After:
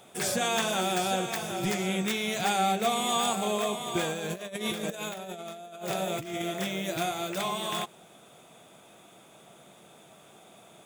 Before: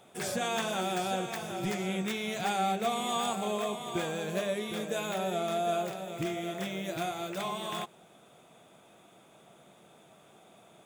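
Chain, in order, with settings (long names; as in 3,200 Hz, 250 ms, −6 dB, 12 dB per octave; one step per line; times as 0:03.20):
high-shelf EQ 3,100 Hz +5 dB
0:04.12–0:06.42: compressor whose output falls as the input rises −37 dBFS, ratio −0.5
level +3 dB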